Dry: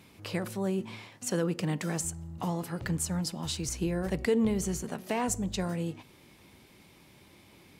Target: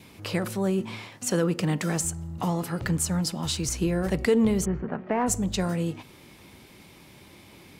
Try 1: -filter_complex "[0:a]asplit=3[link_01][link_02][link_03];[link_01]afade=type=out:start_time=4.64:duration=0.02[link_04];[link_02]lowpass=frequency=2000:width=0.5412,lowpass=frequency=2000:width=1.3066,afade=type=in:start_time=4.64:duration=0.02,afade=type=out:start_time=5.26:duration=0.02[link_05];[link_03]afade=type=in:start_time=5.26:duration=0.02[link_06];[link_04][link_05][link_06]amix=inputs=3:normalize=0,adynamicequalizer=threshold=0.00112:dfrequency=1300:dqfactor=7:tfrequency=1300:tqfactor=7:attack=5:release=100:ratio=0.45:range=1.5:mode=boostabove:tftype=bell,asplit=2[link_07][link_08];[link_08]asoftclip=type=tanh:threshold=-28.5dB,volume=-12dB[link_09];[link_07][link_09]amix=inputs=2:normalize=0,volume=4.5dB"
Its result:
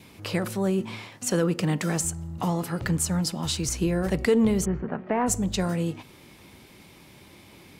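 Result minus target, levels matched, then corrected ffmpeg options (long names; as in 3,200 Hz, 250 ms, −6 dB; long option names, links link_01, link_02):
soft clipping: distortion −6 dB
-filter_complex "[0:a]asplit=3[link_01][link_02][link_03];[link_01]afade=type=out:start_time=4.64:duration=0.02[link_04];[link_02]lowpass=frequency=2000:width=0.5412,lowpass=frequency=2000:width=1.3066,afade=type=in:start_time=4.64:duration=0.02,afade=type=out:start_time=5.26:duration=0.02[link_05];[link_03]afade=type=in:start_time=5.26:duration=0.02[link_06];[link_04][link_05][link_06]amix=inputs=3:normalize=0,adynamicequalizer=threshold=0.00112:dfrequency=1300:dqfactor=7:tfrequency=1300:tqfactor=7:attack=5:release=100:ratio=0.45:range=1.5:mode=boostabove:tftype=bell,asplit=2[link_07][link_08];[link_08]asoftclip=type=tanh:threshold=-37.5dB,volume=-12dB[link_09];[link_07][link_09]amix=inputs=2:normalize=0,volume=4.5dB"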